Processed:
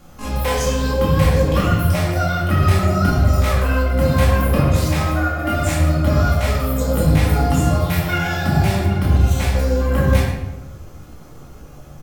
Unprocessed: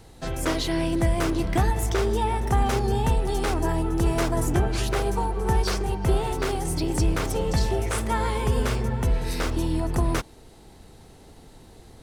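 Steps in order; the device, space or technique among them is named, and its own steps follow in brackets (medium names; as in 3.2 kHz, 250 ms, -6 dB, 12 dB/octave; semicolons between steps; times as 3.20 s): 5.03–5.54 s: high-pass 150 Hz 24 dB/octave; band-stop 410 Hz, Q 12; delay 102 ms -13.5 dB; chipmunk voice (pitch shift +8 st); simulated room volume 370 m³, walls mixed, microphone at 2.3 m; trim -1.5 dB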